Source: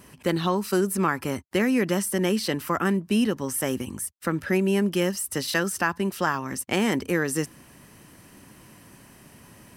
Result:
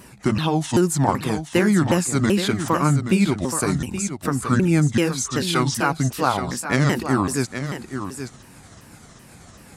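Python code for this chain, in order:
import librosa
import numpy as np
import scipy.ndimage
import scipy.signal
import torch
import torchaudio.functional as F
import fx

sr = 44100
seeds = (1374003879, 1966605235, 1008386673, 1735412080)

y = fx.pitch_ramps(x, sr, semitones=-8.5, every_ms=383)
y = y + 10.0 ** (-9.0 / 20.0) * np.pad(y, (int(825 * sr / 1000.0), 0))[:len(y)]
y = F.gain(torch.from_numpy(y), 5.5).numpy()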